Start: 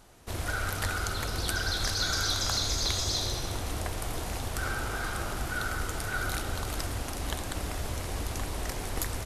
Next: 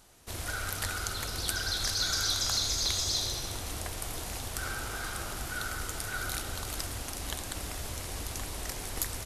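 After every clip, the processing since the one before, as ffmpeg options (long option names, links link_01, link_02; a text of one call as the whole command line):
ffmpeg -i in.wav -af "highshelf=frequency=2600:gain=8,volume=-5.5dB" out.wav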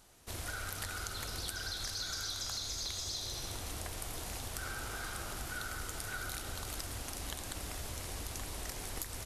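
ffmpeg -i in.wav -af "acompressor=threshold=-33dB:ratio=6,volume=-3dB" out.wav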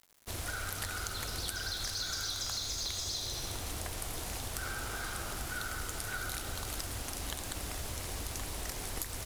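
ffmpeg -i in.wav -af "acrusher=bits=8:mix=0:aa=0.000001,volume=2.5dB" out.wav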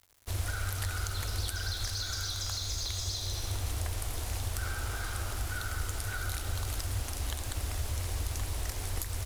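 ffmpeg -i in.wav -af "lowshelf=frequency=120:width_type=q:width=3:gain=6" out.wav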